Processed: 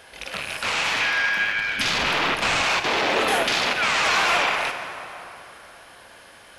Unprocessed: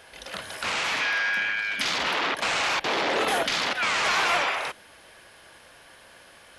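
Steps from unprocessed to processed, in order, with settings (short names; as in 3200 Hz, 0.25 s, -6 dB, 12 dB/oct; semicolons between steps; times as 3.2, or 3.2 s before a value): rattling part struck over -51 dBFS, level -20 dBFS; 1.53–2.63 low shelf 150 Hz +10.5 dB; plate-style reverb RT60 3.5 s, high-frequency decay 0.6×, DRR 6.5 dB; gain +2.5 dB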